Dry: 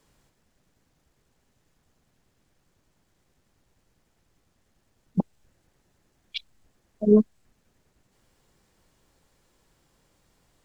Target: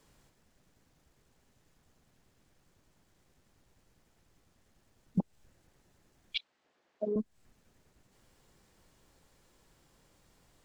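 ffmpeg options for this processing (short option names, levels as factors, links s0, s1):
-filter_complex "[0:a]acompressor=threshold=0.0562:ratio=16,asettb=1/sr,asplit=3[s0][s1][s2];[s0]atrim=end=6.364[s3];[s1]atrim=start=6.36:end=7.16,asetpts=PTS-STARTPTS,afade=t=in:d=0.004:c=qsin,afade=t=out:st=0.796:d=0.004:c=qsin,highpass=410,lowpass=4000[s4];[s2]atrim=start=7.156[s5];[s3][s4]acrossfade=d=0.004:c1=hsin:c2=qsin[s6];[s6][s5]acrossfade=d=0.004:c1=qsin:c2=hsin"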